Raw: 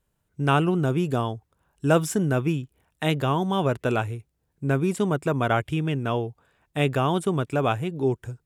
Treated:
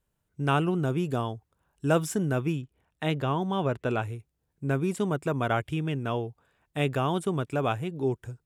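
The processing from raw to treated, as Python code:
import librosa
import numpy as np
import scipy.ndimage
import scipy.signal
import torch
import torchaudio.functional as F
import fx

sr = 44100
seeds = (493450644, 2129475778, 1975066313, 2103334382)

y = fx.high_shelf(x, sr, hz=7000.0, db=-11.0, at=(2.61, 4.03))
y = y * 10.0 ** (-4.0 / 20.0)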